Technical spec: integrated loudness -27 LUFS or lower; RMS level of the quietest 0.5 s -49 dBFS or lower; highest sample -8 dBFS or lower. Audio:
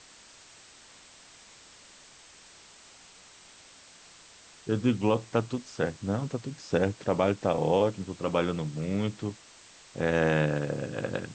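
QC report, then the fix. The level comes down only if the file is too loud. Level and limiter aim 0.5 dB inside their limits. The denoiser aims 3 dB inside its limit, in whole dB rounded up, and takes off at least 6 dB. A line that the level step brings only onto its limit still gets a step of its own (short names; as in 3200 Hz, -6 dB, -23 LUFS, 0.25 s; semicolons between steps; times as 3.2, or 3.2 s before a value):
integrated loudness -29.0 LUFS: OK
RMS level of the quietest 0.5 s -54 dBFS: OK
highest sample -10.5 dBFS: OK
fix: none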